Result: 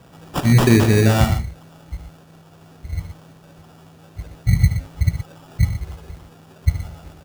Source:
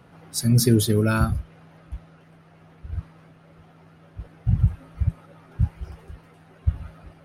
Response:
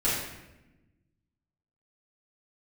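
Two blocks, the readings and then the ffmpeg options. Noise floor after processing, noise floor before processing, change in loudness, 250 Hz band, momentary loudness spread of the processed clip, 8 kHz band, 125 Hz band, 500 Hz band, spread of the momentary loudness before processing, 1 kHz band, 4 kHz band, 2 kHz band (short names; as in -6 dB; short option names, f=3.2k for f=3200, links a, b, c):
-48 dBFS, -52 dBFS, +5.0 dB, +5.0 dB, 23 LU, -0.5 dB, +5.5 dB, +6.0 dB, 23 LU, +7.5 dB, +3.5 dB, +8.5 dB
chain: -filter_complex "[0:a]acrusher=samples=21:mix=1:aa=0.000001,asplit=2[a][b];[b]aecho=0:1:74|121:0.266|0.299[c];[a][c]amix=inputs=2:normalize=0,volume=4.5dB"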